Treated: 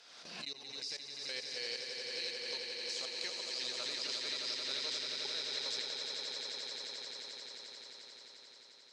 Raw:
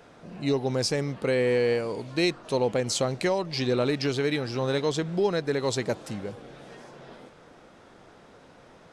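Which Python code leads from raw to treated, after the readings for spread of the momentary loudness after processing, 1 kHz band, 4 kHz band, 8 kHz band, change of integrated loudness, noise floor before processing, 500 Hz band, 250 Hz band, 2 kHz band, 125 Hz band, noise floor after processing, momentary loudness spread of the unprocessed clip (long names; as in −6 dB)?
13 LU, −18.5 dB, −0.5 dB, −7.5 dB, −11.5 dB, −53 dBFS, −23.0 dB, −28.5 dB, −10.0 dB, below −35 dB, −58 dBFS, 16 LU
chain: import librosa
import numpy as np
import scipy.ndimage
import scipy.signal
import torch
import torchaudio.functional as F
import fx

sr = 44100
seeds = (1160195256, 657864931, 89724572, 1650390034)

p1 = fx.bandpass_q(x, sr, hz=4700.0, q=2.7)
p2 = p1 + 10.0 ** (-15.5 / 20.0) * np.pad(p1, (int(80 * sr / 1000.0), 0))[:len(p1)]
p3 = fx.level_steps(p2, sr, step_db=23)
p4 = p3 + fx.echo_swell(p3, sr, ms=88, loudest=8, wet_db=-7.5, dry=0)
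p5 = fx.pre_swell(p4, sr, db_per_s=41.0)
y = p5 * 10.0 ** (4.0 / 20.0)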